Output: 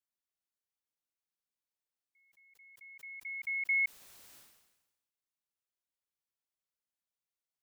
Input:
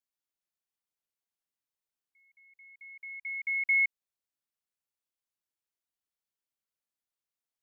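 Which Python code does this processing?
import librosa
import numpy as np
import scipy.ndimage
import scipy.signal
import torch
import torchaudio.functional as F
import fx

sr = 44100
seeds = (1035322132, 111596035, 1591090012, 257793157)

y = fx.sustainer(x, sr, db_per_s=53.0)
y = F.gain(torch.from_numpy(y), -4.5).numpy()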